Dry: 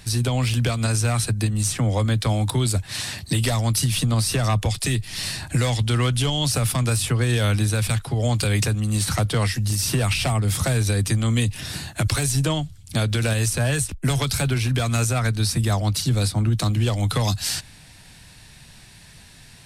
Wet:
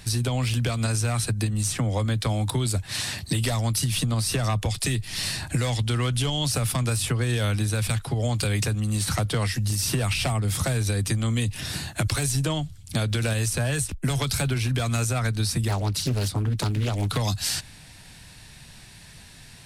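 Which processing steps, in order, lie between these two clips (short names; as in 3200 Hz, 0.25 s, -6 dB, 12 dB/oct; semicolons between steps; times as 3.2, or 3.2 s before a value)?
compressor 3:1, threshold -22 dBFS, peak gain reduction 5 dB; 15.68–17.17 Doppler distortion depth 0.74 ms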